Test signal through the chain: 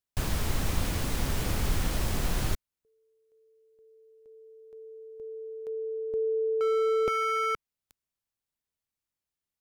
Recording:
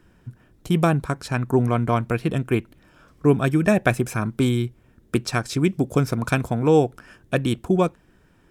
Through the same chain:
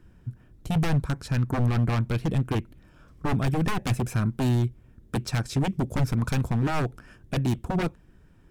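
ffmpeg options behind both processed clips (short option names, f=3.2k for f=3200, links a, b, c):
-af "aeval=exprs='0.126*(abs(mod(val(0)/0.126+3,4)-2)-1)':c=same,lowshelf=f=190:g=11.5,volume=-5.5dB"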